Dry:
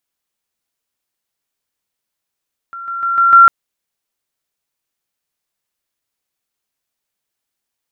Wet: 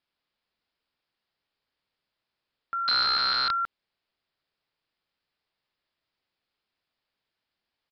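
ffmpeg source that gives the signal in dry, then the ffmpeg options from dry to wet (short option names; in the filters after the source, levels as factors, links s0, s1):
-f lavfi -i "aevalsrc='pow(10,(-26+6*floor(t/0.15))/20)*sin(2*PI*1370*t)':d=0.75:s=44100"
-af "acompressor=threshold=0.126:ratio=12,aecho=1:1:171:0.398,aresample=11025,aeval=exprs='(mod(10.6*val(0)+1,2)-1)/10.6':c=same,aresample=44100"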